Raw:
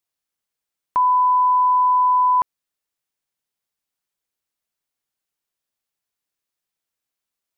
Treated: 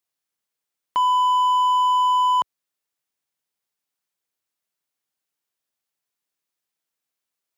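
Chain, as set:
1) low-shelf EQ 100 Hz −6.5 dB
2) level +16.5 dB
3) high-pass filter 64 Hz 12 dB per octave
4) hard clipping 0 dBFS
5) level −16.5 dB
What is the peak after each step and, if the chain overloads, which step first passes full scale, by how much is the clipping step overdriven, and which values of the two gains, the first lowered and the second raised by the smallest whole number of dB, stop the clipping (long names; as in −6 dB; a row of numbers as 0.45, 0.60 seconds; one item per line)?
−12.5, +4.0, +4.5, 0.0, −16.5 dBFS
step 2, 4.5 dB
step 2 +11.5 dB, step 5 −11.5 dB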